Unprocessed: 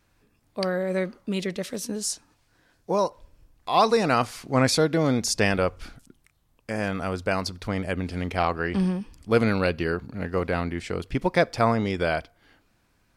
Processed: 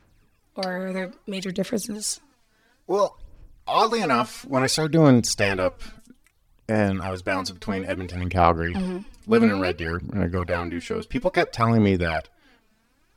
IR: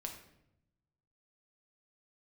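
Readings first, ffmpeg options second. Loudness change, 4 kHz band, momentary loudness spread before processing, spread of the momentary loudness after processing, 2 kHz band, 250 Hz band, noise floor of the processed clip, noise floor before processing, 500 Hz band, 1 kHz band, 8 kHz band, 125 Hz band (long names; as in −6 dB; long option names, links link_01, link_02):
+2.0 dB, +1.0 dB, 9 LU, 11 LU, +1.0 dB, +3.0 dB, −65 dBFS, −67 dBFS, +1.0 dB, +2.0 dB, +1.5 dB, +2.5 dB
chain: -af "aphaser=in_gain=1:out_gain=1:delay=4.6:decay=0.65:speed=0.59:type=sinusoidal,volume=-1dB"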